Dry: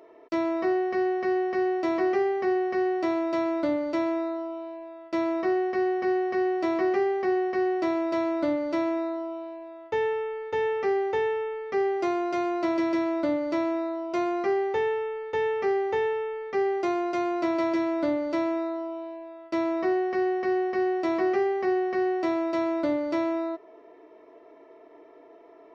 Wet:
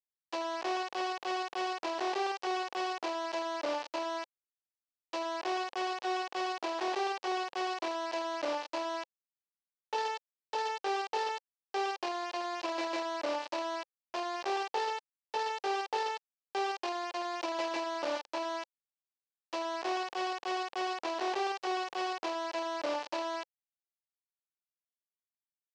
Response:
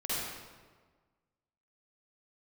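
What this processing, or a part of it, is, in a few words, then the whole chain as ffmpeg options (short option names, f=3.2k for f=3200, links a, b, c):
hand-held game console: -filter_complex "[0:a]asettb=1/sr,asplit=3[a][b][c];[a]atrim=end=17.744[d];[b]atrim=start=17.74:end=18.54,asetpts=PTS-STARTPTS,afade=t=in:d=0.004:c=qsin,afade=t=out:st=0.796:d=0.004:c=qsin,bandreject=f=50:t=h:w=6,bandreject=f=100:t=h:w=6,bandreject=f=150:t=h:w=6,bandreject=f=200:t=h:w=6,bandreject=f=250:t=h:w=6,bandreject=f=300:t=h:w=6,bandreject=f=350:t=h:w=6[e];[c]atrim=start=18.536[f];[d][e]acrossfade=d=0.004:c1=hsin:c2=qsin[g];[g][f]acrossfade=d=0.004:c1=qsin:c2=hsin,acrusher=bits=3:mix=0:aa=0.000001,highpass=460,equalizer=f=530:t=q:w=4:g=5,equalizer=f=860:t=q:w=4:g=6,equalizer=f=1.4k:t=q:w=4:g=-6,equalizer=f=2.1k:t=q:w=4:g=-6,equalizer=f=3.5k:t=q:w=4:g=-4,lowpass=f=5.3k:w=0.5412,lowpass=f=5.3k:w=1.3066,volume=-8.5dB"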